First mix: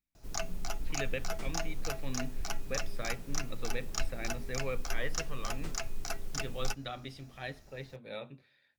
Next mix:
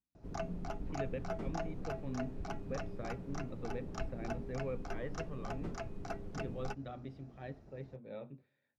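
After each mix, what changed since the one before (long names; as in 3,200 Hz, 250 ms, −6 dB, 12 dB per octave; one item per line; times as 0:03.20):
background +5.5 dB
master: add resonant band-pass 220 Hz, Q 0.51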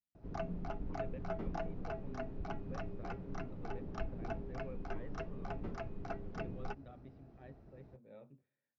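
speech −9.0 dB
master: add high-frequency loss of the air 180 metres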